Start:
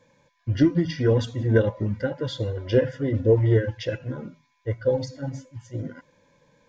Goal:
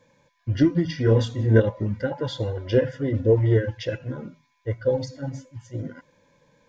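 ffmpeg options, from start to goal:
-filter_complex "[0:a]asettb=1/sr,asplit=3[s0][s1][s2];[s0]atrim=end=1.044[s3];[s1]atrim=start=1.04:end=1.6,asetpts=PTS-STARTPTS,afade=t=in:d=0.004:c=qsin,afade=t=out:st=0.556:d=0.004:c=qsin,asplit=2[s4][s5];[s5]adelay=27,volume=0.596[s6];[s4][s6]amix=inputs=2:normalize=0,atrim=end_sample=24696[s7];[s2]atrim=start=1.596[s8];[s3][s7]acrossfade=d=0.004:c1=hsin:c2=qsin[s9];[s9][s8]acrossfade=d=0.004:c1=qsin:c2=hsin,asettb=1/sr,asplit=3[s10][s11][s12];[s10]atrim=end=2.114[s13];[s11]atrim=start=2.11:end=2.58,asetpts=PTS-STARTPTS,afade=t=in:d=0.004:c=qsin,afade=t=out:st=0.466:d=0.004:c=qsin,equalizer=f=830:t=o:w=0.46:g=12[s14];[s12]atrim=start=2.576[s15];[s13][s14]acrossfade=d=0.004:c1=hsin:c2=qsin[s16];[s16][s15]acrossfade=d=0.004:c1=qsin:c2=hsin"

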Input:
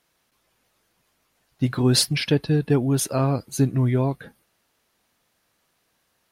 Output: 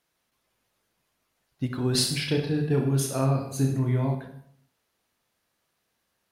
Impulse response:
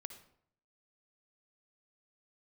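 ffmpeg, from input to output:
-filter_complex "[0:a]asettb=1/sr,asplit=3[s0][s1][s2];[s0]atrim=end=1.924[s3];[s1]atrim=start=1.92:end=4.15,asetpts=PTS-STARTPTS,afade=t=in:d=0.004:c=qsin,afade=t=out:st=2.226:d=0.004:c=qsin,aecho=1:1:30|64.5|104.2|149.8|202.3:0.631|0.398|0.251|0.158|0.1,atrim=end_sample=98343[s4];[s2]atrim=start=4.146[s5];[s3][s4]acrossfade=d=0.004:c1=hsin:c2=qsin[s6];[s6][s5]acrossfade=d=0.004:c1=qsin:c2=hsin[s7];[1:a]atrim=start_sample=2205[s8];[s7][s8]afir=irnorm=-1:irlink=0,volume=0.794"

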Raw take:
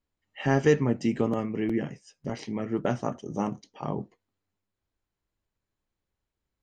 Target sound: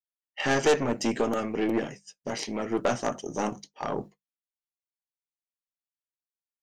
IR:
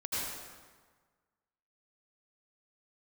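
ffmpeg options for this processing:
-af "aeval=exprs='(tanh(14.1*val(0)+0.5)-tanh(0.5))/14.1':c=same,bass=f=250:g=-11,treble=f=4000:g=7,bandreject=f=50:t=h:w=6,bandreject=f=100:t=h:w=6,bandreject=f=150:t=h:w=6,bandreject=f=200:t=h:w=6,agate=range=0.0224:threshold=0.00631:ratio=3:detection=peak,volume=2.51"

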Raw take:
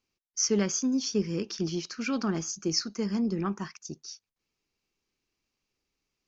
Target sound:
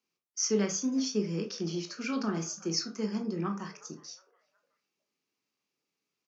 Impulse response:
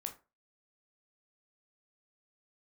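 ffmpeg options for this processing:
-filter_complex "[0:a]acrossover=split=130|370|3300[s0][s1][s2][s3];[s0]acrusher=bits=4:mix=0:aa=0.000001[s4];[s2]asplit=4[s5][s6][s7][s8];[s6]adelay=365,afreqshift=84,volume=0.112[s9];[s7]adelay=730,afreqshift=168,volume=0.0403[s10];[s8]adelay=1095,afreqshift=252,volume=0.0146[s11];[s5][s9][s10][s11]amix=inputs=4:normalize=0[s12];[s4][s1][s12][s3]amix=inputs=4:normalize=0[s13];[1:a]atrim=start_sample=2205[s14];[s13][s14]afir=irnorm=-1:irlink=0"

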